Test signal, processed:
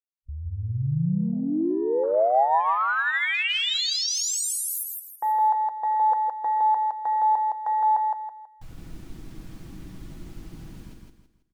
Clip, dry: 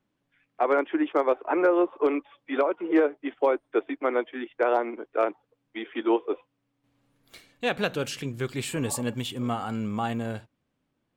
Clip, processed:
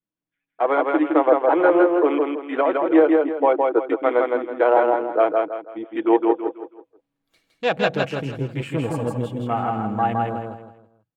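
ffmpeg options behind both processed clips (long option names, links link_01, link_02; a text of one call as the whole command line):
ffmpeg -i in.wav -filter_complex "[0:a]afwtdn=0.0158,highshelf=frequency=9000:gain=-4.5,aecho=1:1:6.2:0.35,adynamicequalizer=threshold=0.0112:dfrequency=730:dqfactor=1.8:tfrequency=730:tqfactor=1.8:attack=5:release=100:ratio=0.375:range=3:mode=boostabove:tftype=bell,dynaudnorm=framelen=110:gausssize=13:maxgain=3dB,asplit=2[link_01][link_02];[link_02]aecho=0:1:163|326|489|652:0.708|0.241|0.0818|0.0278[link_03];[link_01][link_03]amix=inputs=2:normalize=0" out.wav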